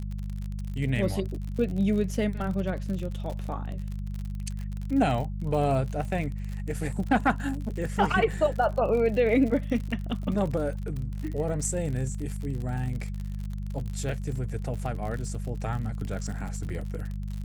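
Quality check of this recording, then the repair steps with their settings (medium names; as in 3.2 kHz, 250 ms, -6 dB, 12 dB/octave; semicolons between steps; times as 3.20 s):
crackle 54 per s -33 dBFS
hum 50 Hz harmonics 4 -33 dBFS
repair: de-click; de-hum 50 Hz, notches 4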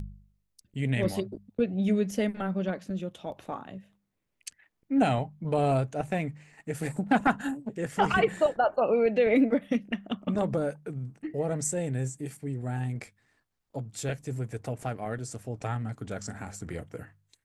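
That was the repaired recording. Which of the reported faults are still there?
nothing left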